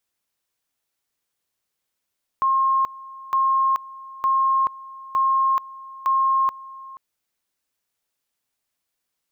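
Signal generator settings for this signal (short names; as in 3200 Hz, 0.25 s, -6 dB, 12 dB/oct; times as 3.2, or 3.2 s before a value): two-level tone 1070 Hz -16 dBFS, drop 20 dB, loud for 0.43 s, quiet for 0.48 s, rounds 5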